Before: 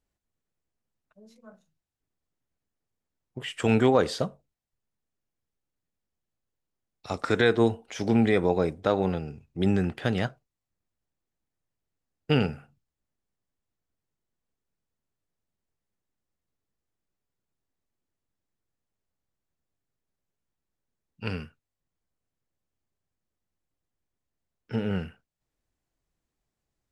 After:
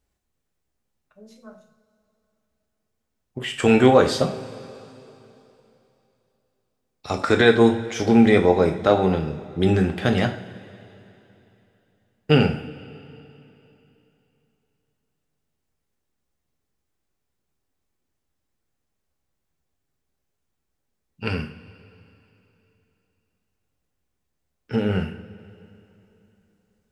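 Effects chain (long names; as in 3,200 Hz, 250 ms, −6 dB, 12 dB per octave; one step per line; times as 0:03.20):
coupled-rooms reverb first 0.41 s, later 3.2 s, from −18 dB, DRR 4 dB
level +5.5 dB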